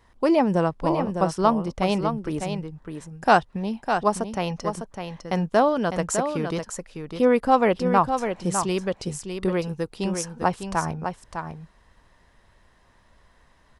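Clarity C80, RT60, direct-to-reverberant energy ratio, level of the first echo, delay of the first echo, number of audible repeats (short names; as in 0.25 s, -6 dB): none, none, none, -7.0 dB, 0.604 s, 1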